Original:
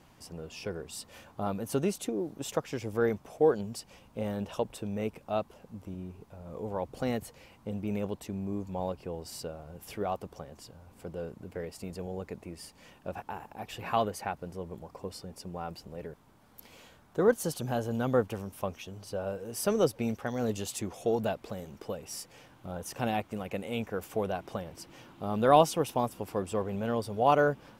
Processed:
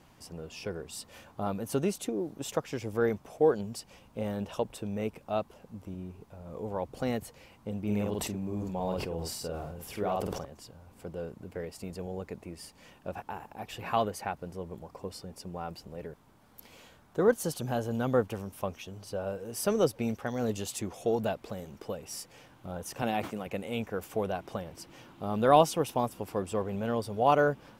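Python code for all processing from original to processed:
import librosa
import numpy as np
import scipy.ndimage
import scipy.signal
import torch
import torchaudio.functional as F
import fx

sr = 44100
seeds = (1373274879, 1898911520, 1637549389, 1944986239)

y = fx.chain(x, sr, fx.doubler(ms=48.0, db=-4.0),
    fx.sustainer(db_per_s=31.0), at=(7.82, 10.45))
y = fx.chain(y, sr, fx.highpass(hz=140.0, slope=12),
    fx.sustainer(db_per_s=130.0), at=(23.02, 23.47))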